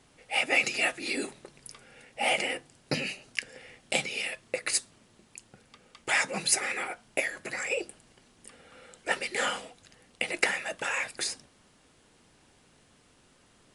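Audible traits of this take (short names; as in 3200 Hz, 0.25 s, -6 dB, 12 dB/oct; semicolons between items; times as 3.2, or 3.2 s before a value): noise floor -63 dBFS; spectral tilt -1.0 dB/oct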